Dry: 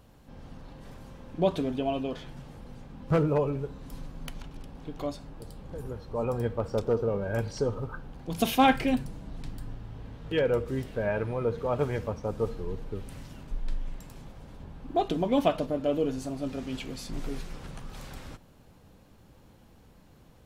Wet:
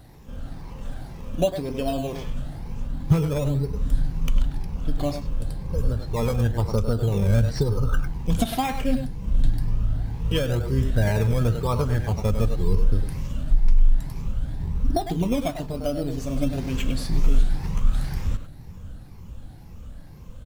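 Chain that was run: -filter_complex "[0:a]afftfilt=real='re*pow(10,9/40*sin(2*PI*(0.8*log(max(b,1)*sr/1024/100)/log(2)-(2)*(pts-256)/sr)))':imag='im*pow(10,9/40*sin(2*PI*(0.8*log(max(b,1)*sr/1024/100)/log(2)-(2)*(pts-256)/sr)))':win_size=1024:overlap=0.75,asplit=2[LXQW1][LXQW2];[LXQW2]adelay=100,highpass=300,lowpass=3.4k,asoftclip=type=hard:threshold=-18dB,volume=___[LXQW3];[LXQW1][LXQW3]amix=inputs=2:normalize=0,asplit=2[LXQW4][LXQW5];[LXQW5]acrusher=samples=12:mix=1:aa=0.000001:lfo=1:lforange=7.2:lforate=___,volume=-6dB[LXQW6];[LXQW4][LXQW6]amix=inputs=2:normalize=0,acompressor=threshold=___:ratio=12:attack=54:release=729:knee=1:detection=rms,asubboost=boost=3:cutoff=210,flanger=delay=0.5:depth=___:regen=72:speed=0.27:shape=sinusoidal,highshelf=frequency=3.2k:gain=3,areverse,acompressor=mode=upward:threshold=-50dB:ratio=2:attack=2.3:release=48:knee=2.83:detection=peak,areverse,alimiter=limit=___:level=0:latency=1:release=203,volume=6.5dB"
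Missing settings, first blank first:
-7dB, 0.99, -23dB, 1.4, -14.5dB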